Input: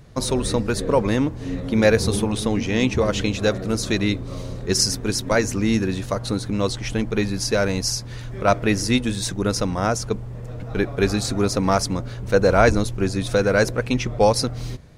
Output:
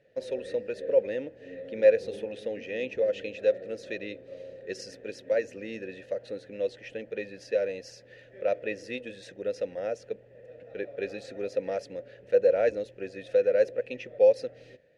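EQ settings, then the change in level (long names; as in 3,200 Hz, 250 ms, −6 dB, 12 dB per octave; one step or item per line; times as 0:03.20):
dynamic equaliser 1,700 Hz, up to −4 dB, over −37 dBFS, Q 2.8
formant filter e
0.0 dB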